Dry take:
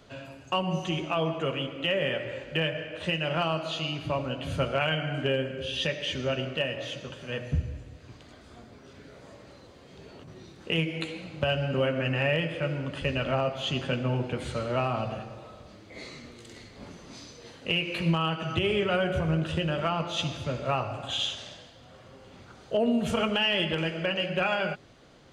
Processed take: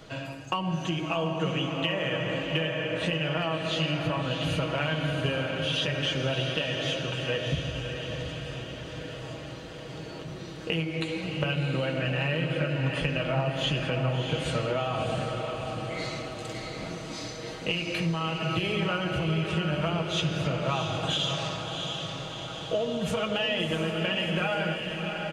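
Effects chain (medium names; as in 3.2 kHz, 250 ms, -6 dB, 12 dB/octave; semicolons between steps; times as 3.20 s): comb 6.3 ms, depth 56%; compression 6:1, threshold -32 dBFS, peak gain reduction 14 dB; on a send: echo that smears into a reverb 684 ms, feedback 59%, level -5 dB; on the sum: trim +5.5 dB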